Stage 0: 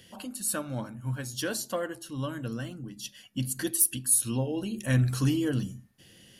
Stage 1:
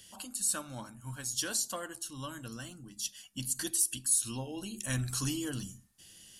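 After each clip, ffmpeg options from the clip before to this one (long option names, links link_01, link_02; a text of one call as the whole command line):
ffmpeg -i in.wav -filter_complex "[0:a]acrossover=split=7000[link_01][link_02];[link_02]acompressor=threshold=-39dB:ratio=4:attack=1:release=60[link_03];[link_01][link_03]amix=inputs=2:normalize=0,equalizer=frequency=125:width_type=o:width=1:gain=-9,equalizer=frequency=250:width_type=o:width=1:gain=-6,equalizer=frequency=500:width_type=o:width=1:gain=-10,equalizer=frequency=2000:width_type=o:width=1:gain=-6,equalizer=frequency=8000:width_type=o:width=1:gain=9" out.wav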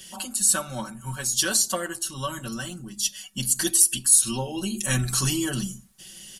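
ffmpeg -i in.wav -af "aecho=1:1:5.3:0.98,volume=8dB" out.wav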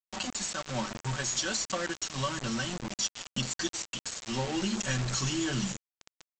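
ffmpeg -i in.wav -af "acompressor=threshold=-26dB:ratio=16,aresample=16000,acrusher=bits=5:mix=0:aa=0.000001,aresample=44100" out.wav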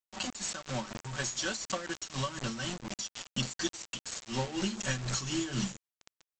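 ffmpeg -i in.wav -af "tremolo=f=4.1:d=0.66" out.wav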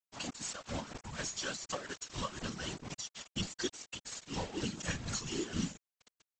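ffmpeg -i in.wav -af "afftfilt=real='hypot(re,im)*cos(2*PI*random(0))':imag='hypot(re,im)*sin(2*PI*random(1))':win_size=512:overlap=0.75,volume=1.5dB" out.wav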